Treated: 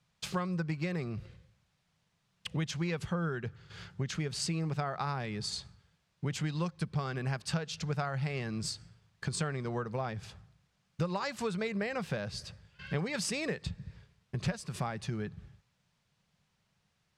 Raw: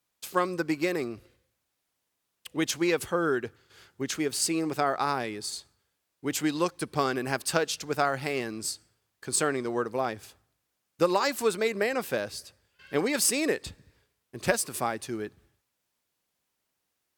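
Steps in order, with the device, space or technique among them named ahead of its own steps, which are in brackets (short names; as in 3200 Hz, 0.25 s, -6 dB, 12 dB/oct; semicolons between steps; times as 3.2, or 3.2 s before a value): jukebox (LPF 5400 Hz 12 dB/oct; resonant low shelf 220 Hz +8.5 dB, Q 3; compressor 4:1, threshold -39 dBFS, peak gain reduction 20 dB); gain +5.5 dB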